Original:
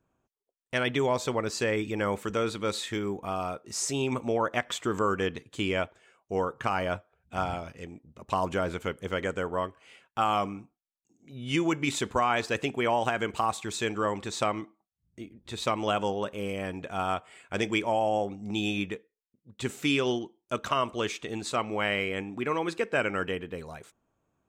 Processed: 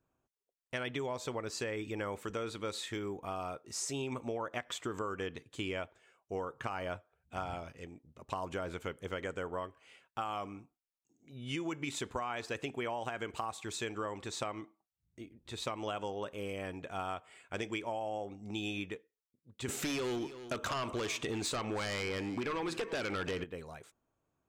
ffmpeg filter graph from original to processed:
-filter_complex "[0:a]asettb=1/sr,asplit=3[s0][s1][s2];[s0]atrim=end=19.684[s3];[s1]atrim=start=19.68:end=23.44,asetpts=PTS-STARTPTS,afade=t=in:d=0.004:c=qsin,afade=t=out:st=3.756:d=0.004:c=qsin,acompressor=threshold=0.02:ratio=2:attack=3.2:release=140:knee=1:detection=peak,aeval=exprs='0.0944*sin(PI/2*2.82*val(0)/0.0944)':c=same,aecho=1:1:325:0.126,atrim=end_sample=165816[s4];[s2]atrim=start=23.436[s5];[s3][s4]acrossfade=d=0.004:c1=hsin:c2=qsin[s6];[s6][s5]acrossfade=d=0.004:c1=qsin:c2=hsin,equalizer=f=200:t=o:w=0.34:g=-4.5,acompressor=threshold=0.0398:ratio=6,volume=0.531"

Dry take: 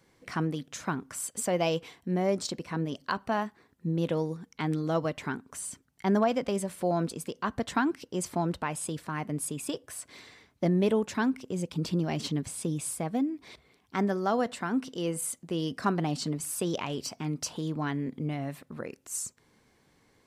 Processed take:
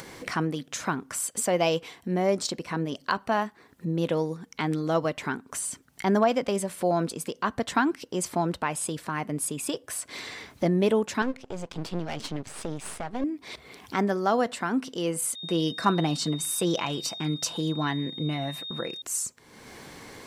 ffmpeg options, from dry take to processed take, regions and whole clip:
-filter_complex "[0:a]asettb=1/sr,asplit=3[s0][s1][s2];[s0]atrim=end=11.224[s3];[s1]atrim=start=11.22:end=13.24,asetpts=PTS-STARTPTS,afade=t=in:d=0.004:c=qsin,afade=t=out:st=2.016:d=0.004:c=qsin,aeval=exprs='max(val(0),0)':c=same,adynamicsmooth=sensitivity=6.5:basefreq=7700[s4];[s2]atrim=start=13.236[s5];[s3][s4]acrossfade=d=0.004:c1=hsin:c2=qsin[s6];[s6][s5]acrossfade=d=0.004:c1=qsin:c2=hsin,asettb=1/sr,asplit=3[s7][s8][s9];[s7]atrim=end=15.354[s10];[s8]atrim=start=15.35:end=19.02,asetpts=PTS-STARTPTS,afade=t=in:d=0.004:c=qsin,afade=t=out:st=3.666:d=0.004:c=qsin,agate=range=0.0224:threshold=0.00224:ratio=3:release=100:detection=peak,aeval=exprs='val(0)+0.00562*sin(2*PI*3700*n/s)':c=same,aecho=1:1:6:0.44,atrim=end_sample=161847[s11];[s9]atrim=start=19.016[s12];[s10][s11]acrossfade=d=0.004:c1=hsin:c2=qsin[s13];[s13][s12]acrossfade=d=0.004:c1=qsin:c2=hsin,acompressor=mode=upward:threshold=0.0251:ratio=2.5,lowshelf=f=210:g=-6.5,volume=1.68"

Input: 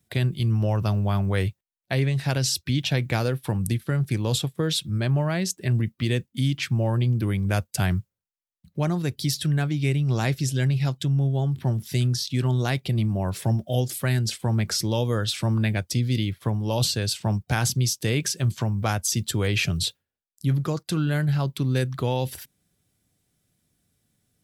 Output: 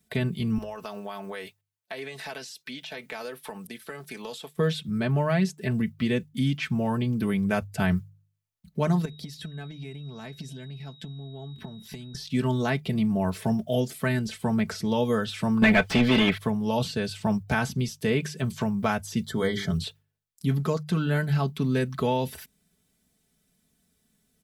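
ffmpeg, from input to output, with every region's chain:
-filter_complex "[0:a]asettb=1/sr,asplit=3[s0][s1][s2];[s0]atrim=end=0.584[s3];[s1]atrim=start=0.58:end=4.57,asetpts=PTS-STARTPTS,afade=t=in:d=0.004:c=qsin,afade=t=out:st=3.986:d=0.004:c=qsin,highpass=460,bandreject=f=1400:w=26,acompressor=threshold=0.02:ratio=4:attack=3.2:release=140:knee=1:detection=peak[s4];[s2]atrim=start=4.566[s5];[s3][s4]acrossfade=d=0.004:c1=hsin:c2=qsin[s6];[s6][s5]acrossfade=d=0.004:c1=qsin:c2=hsin,asettb=1/sr,asplit=3[s7][s8][s9];[s7]atrim=end=9.054[s10];[s8]atrim=start=9.05:end=12.15,asetpts=PTS-STARTPTS,afade=t=in:d=0.004:c=qsin,afade=t=out:st=3.096:d=0.004:c=qsin,highshelf=f=3500:g=-9,acompressor=threshold=0.02:ratio=12:attack=3.2:release=140:knee=1:detection=peak,aeval=exprs='val(0)+0.00447*sin(2*PI*3800*n/s)':c=same[s11];[s9]atrim=start=12.146[s12];[s10][s11]acrossfade=d=0.004:c1=hsin:c2=qsin[s13];[s13][s12]acrossfade=d=0.004:c1=qsin:c2=hsin,asettb=1/sr,asplit=3[s14][s15][s16];[s14]atrim=end=15.624[s17];[s15]atrim=start=15.62:end=16.38,asetpts=PTS-STARTPTS,afade=t=in:d=0.004:c=qsin,afade=t=out:st=0.756:d=0.004:c=qsin,equalizer=f=3000:w=1.1:g=4.5,asplit=2[s18][s19];[s19]highpass=f=720:p=1,volume=22.4,asoftclip=type=tanh:threshold=0.316[s20];[s18][s20]amix=inputs=2:normalize=0,lowpass=f=4400:p=1,volume=0.501[s21];[s16]atrim=start=16.376[s22];[s17][s21]acrossfade=d=0.004:c1=hsin:c2=qsin[s23];[s23][s22]acrossfade=d=0.004:c1=qsin:c2=hsin,asettb=1/sr,asplit=3[s24][s25][s26];[s24]atrim=end=19.254[s27];[s25]atrim=start=19.25:end=19.75,asetpts=PTS-STARTPTS,afade=t=in:d=0.004:c=qsin,afade=t=out:st=0.496:d=0.004:c=qsin,asuperstop=centerf=2600:order=8:qfactor=3.1,bandreject=f=50:t=h:w=6,bandreject=f=100:t=h:w=6,bandreject=f=150:t=h:w=6,bandreject=f=200:t=h:w=6,bandreject=f=250:t=h:w=6,bandreject=f=300:t=h:w=6,bandreject=f=350:t=h:w=6,bandreject=f=400:t=h:w=6,bandreject=f=450:t=h:w=6[s28];[s26]atrim=start=19.746[s29];[s27][s28]acrossfade=d=0.004:c1=hsin:c2=qsin[s30];[s30][s29]acrossfade=d=0.004:c1=qsin:c2=hsin,bandreject=f=50.24:t=h:w=4,bandreject=f=100.48:t=h:w=4,bandreject=f=150.72:t=h:w=4,acrossover=split=2600[s31][s32];[s32]acompressor=threshold=0.00794:ratio=4:attack=1:release=60[s33];[s31][s33]amix=inputs=2:normalize=0,aecho=1:1:4.6:0.7"

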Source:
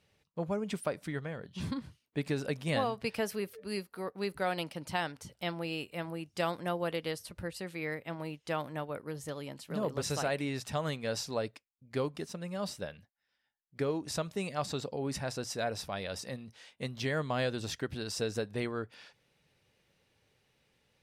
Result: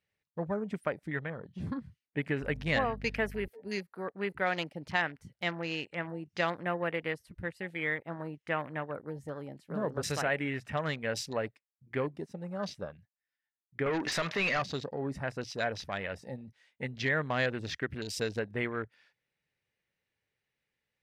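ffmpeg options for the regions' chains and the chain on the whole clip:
-filter_complex "[0:a]asettb=1/sr,asplit=3[s0][s1][s2];[s0]atrim=end=2.424[s3];[s1]atrim=start=2.42:end=3.48,asetpts=PTS-STARTPTS,afade=t=in:d=0.004:c=qsin,afade=t=out:st=1.056:d=0.004:c=qsin,highshelf=f=12000:g=7.5,aeval=exprs='val(0)+0.00708*(sin(2*PI*50*n/s)+sin(2*PI*2*50*n/s)/2+sin(2*PI*3*50*n/s)/3+sin(2*PI*4*50*n/s)/4+sin(2*PI*5*50*n/s)/5)':c=same[s4];[s2]atrim=start=3.476[s5];[s3][s4]acrossfade=d=0.004:c1=hsin:c2=qsin[s6];[s6][s5]acrossfade=d=0.004:c1=qsin:c2=hsin,asettb=1/sr,asplit=3[s7][s8][s9];[s7]atrim=end=5.594[s10];[s8]atrim=start=5.59:end=6.46,asetpts=PTS-STARTPTS,afade=t=in:d=0.004:c=qsin,afade=t=out:st=0.866:d=0.004:c=qsin,lowpass=f=9300:w=0.5412,lowpass=f=9300:w=1.3066,acompressor=mode=upward:threshold=0.00562:ratio=2.5:attack=3.2:release=140:knee=2.83:detection=peak[s11];[s9]atrim=start=6.456[s12];[s10][s11]acrossfade=d=0.004:c1=hsin:c2=qsin[s13];[s13][s12]acrossfade=d=0.004:c1=qsin:c2=hsin,asettb=1/sr,asplit=3[s14][s15][s16];[s14]atrim=end=13.864[s17];[s15]atrim=start=13.86:end=14.62,asetpts=PTS-STARTPTS,afade=t=in:d=0.004:c=qsin,afade=t=out:st=0.756:d=0.004:c=qsin,equalizer=f=3400:w=0.36:g=5,acompressor=threshold=0.0224:ratio=6:attack=3.2:release=140:knee=1:detection=peak,asplit=2[s18][s19];[s19]highpass=f=720:p=1,volume=15.8,asoftclip=type=tanh:threshold=0.0668[s20];[s18][s20]amix=inputs=2:normalize=0,lowpass=f=3100:p=1,volume=0.501[s21];[s16]atrim=start=14.616[s22];[s17][s21]acrossfade=d=0.004:c1=hsin:c2=qsin[s23];[s23][s22]acrossfade=d=0.004:c1=qsin:c2=hsin,afwtdn=0.00562,equalizer=f=1900:w=1.8:g=9"

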